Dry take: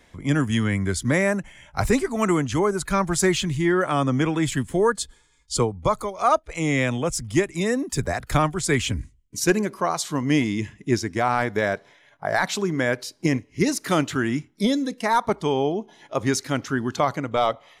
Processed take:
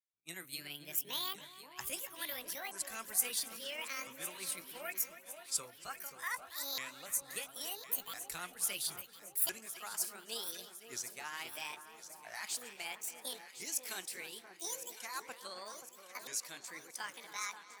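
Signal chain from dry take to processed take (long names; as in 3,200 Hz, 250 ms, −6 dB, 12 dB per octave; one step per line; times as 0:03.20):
pitch shifter swept by a sawtooth +11.5 semitones, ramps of 1,356 ms
first-order pre-emphasis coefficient 0.97
tape delay 278 ms, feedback 69%, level −11.5 dB, low-pass 3,500 Hz
downward expander −42 dBFS
on a send: delay that swaps between a low-pass and a high-pass 529 ms, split 1,400 Hz, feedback 70%, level −9 dB
on the sum: level −6.5 dB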